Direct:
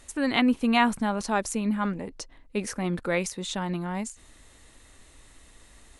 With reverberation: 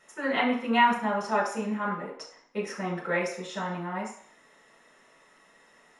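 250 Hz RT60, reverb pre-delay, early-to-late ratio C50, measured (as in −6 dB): 0.45 s, 3 ms, 5.5 dB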